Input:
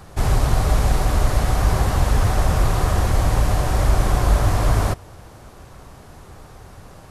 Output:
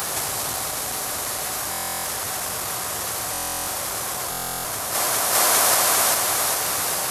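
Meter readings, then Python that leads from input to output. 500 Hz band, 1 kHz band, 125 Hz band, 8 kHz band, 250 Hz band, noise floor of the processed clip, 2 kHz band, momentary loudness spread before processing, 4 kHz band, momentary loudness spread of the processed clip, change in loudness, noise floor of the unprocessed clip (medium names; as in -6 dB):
-2.5 dB, +0.5 dB, -22.0 dB, +13.5 dB, -10.5 dB, -28 dBFS, +3.5 dB, 2 LU, +8.0 dB, 9 LU, -1.0 dB, -44 dBFS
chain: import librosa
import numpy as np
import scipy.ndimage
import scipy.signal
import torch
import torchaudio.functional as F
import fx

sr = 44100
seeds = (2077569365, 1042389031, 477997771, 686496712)

y = fx.octave_divider(x, sr, octaves=1, level_db=-4.0)
y = fx.echo_thinned(y, sr, ms=403, feedback_pct=61, hz=240.0, wet_db=-6.0)
y = 10.0 ** (-4.0 / 20.0) * np.tanh(y / 10.0 ** (-4.0 / 20.0))
y = fx.riaa(y, sr, side='recording')
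y = fx.over_compress(y, sr, threshold_db=-33.0, ratio=-1.0)
y = scipy.signal.sosfilt(scipy.signal.butter(2, 110.0, 'highpass', fs=sr, output='sos'), y)
y = fx.peak_eq(y, sr, hz=220.0, db=-4.5, octaves=1.8)
y = fx.buffer_glitch(y, sr, at_s=(1.7, 3.32, 4.3), block=1024, repeats=14)
y = y * 10.0 ** (8.5 / 20.0)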